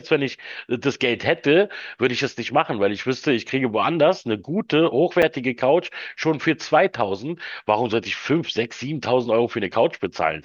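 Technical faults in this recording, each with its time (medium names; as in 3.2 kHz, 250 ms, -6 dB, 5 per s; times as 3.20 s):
5.22–5.23 s: dropout 5.8 ms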